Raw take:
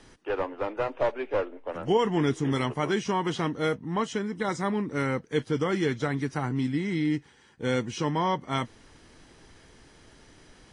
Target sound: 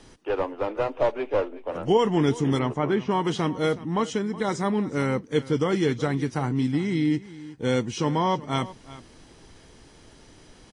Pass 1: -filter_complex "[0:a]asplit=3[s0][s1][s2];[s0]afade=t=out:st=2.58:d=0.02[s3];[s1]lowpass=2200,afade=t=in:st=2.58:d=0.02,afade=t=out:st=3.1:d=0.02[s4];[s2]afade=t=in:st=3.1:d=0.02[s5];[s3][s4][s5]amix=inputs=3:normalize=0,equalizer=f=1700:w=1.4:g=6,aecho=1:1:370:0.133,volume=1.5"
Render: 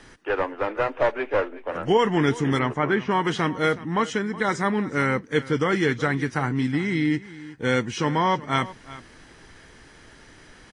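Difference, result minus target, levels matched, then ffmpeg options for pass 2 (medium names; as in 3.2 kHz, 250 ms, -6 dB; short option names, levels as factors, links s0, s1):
2 kHz band +7.0 dB
-filter_complex "[0:a]asplit=3[s0][s1][s2];[s0]afade=t=out:st=2.58:d=0.02[s3];[s1]lowpass=2200,afade=t=in:st=2.58:d=0.02,afade=t=out:st=3.1:d=0.02[s4];[s2]afade=t=in:st=3.1:d=0.02[s5];[s3][s4][s5]amix=inputs=3:normalize=0,equalizer=f=1700:w=1.4:g=-4.5,aecho=1:1:370:0.133,volume=1.5"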